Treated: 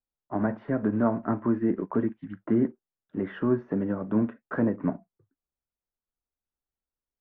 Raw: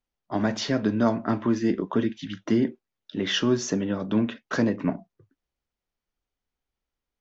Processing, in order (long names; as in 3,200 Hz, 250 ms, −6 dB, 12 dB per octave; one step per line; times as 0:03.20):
one scale factor per block 5 bits
low-pass filter 1,600 Hz 24 dB per octave
in parallel at +2.5 dB: brickwall limiter −20 dBFS, peak gain reduction 9.5 dB
on the sum: expander for the loud parts 1.5 to 1, over −37 dBFS
level −5 dB